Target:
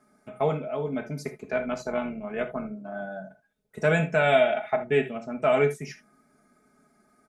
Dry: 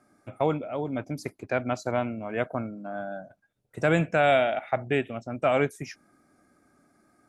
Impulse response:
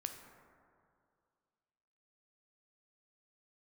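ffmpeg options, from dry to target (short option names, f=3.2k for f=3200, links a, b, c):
-filter_complex "[0:a]asettb=1/sr,asplit=3[a][b][c];[a]atrim=end=1.494[d];[b]atrim=start=1.49:end=3.02,asetpts=PTS-STARTPTS,afade=t=in:d=0.004:c=qsin,afade=t=out:st=1.526:d=0.004:c=qsin,tremolo=f=74:d=0.519[e];[c]atrim=start=3.016[f];[d][e]acrossfade=d=0.004:c1=hsin:c2=qsin[g];[g][f]acrossfade=d=0.004:c1=qsin:c2=hsin,aecho=1:1:4.7:0.79[h];[1:a]atrim=start_sample=2205,afade=t=out:st=0.16:d=0.01,atrim=end_sample=7497,asetrate=57330,aresample=44100[i];[h][i]afir=irnorm=-1:irlink=0,volume=3dB"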